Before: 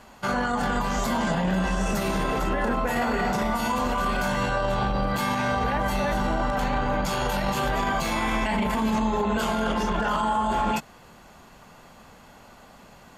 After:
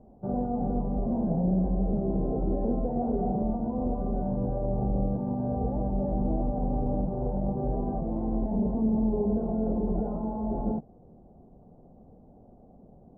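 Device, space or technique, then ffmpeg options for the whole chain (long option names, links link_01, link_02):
under water: -af "lowpass=frequency=490:width=0.5412,lowpass=frequency=490:width=1.3066,equalizer=frequency=740:width_type=o:width=0.28:gain=10"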